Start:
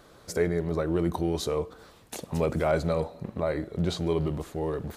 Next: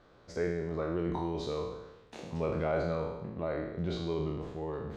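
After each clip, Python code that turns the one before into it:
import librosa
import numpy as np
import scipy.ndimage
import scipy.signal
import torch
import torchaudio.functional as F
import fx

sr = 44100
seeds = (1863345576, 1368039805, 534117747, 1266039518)

y = fx.spec_trails(x, sr, decay_s=1.0)
y = fx.air_absorb(y, sr, metres=160.0)
y = F.gain(torch.from_numpy(y), -8.0).numpy()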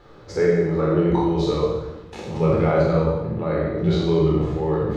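y = fx.rider(x, sr, range_db=4, speed_s=2.0)
y = fx.room_shoebox(y, sr, seeds[0], volume_m3=1900.0, walls='furnished', distance_m=4.1)
y = F.gain(torch.from_numpy(y), 6.5).numpy()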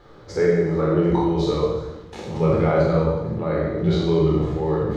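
y = fx.notch(x, sr, hz=2600.0, q=19.0)
y = fx.echo_wet_highpass(y, sr, ms=370, feedback_pct=66, hz=4400.0, wet_db=-18.0)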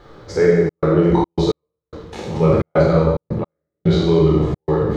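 y = fx.step_gate(x, sr, bpm=109, pattern='xxxxx.xxx.x...', floor_db=-60.0, edge_ms=4.5)
y = F.gain(torch.from_numpy(y), 4.5).numpy()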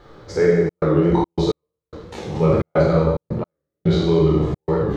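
y = fx.record_warp(x, sr, rpm=45.0, depth_cents=100.0)
y = F.gain(torch.from_numpy(y), -2.0).numpy()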